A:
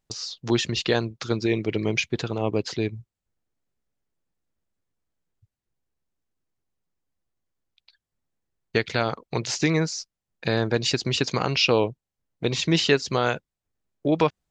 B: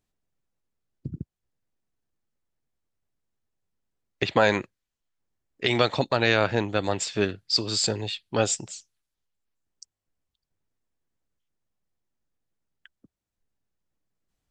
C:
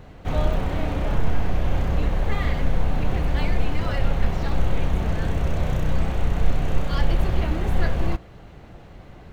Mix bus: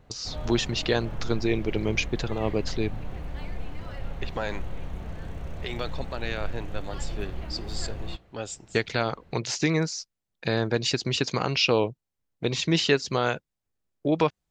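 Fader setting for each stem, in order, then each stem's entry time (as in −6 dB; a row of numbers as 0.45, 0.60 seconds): −2.0, −11.5, −13.0 decibels; 0.00, 0.00, 0.00 seconds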